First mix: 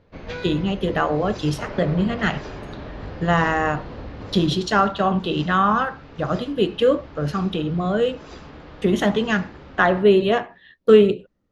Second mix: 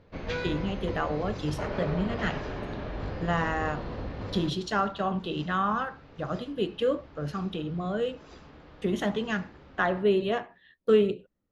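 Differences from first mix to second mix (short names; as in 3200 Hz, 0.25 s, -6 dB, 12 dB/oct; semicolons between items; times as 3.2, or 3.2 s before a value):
speech -9.0 dB; second sound -9.5 dB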